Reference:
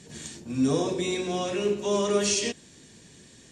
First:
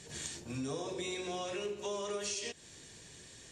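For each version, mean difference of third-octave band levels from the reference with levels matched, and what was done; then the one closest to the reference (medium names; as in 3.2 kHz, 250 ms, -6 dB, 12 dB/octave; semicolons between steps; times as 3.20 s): 5.5 dB: peaking EQ 220 Hz -10 dB 1.2 oct; compression, threshold -36 dBFS, peak gain reduction 13 dB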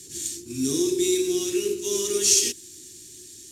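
9.5 dB: CVSD coder 64 kbps; FFT filter 110 Hz 0 dB, 200 Hz -12 dB, 360 Hz +10 dB, 540 Hz -23 dB, 6.7 kHz +13 dB; trim -1 dB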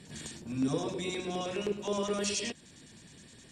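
3.0 dB: in parallel at +0.5 dB: compression, threshold -36 dBFS, peak gain reduction 16 dB; on the sum: LFO notch square 9.6 Hz 420–6400 Hz; trim -7.5 dB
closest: third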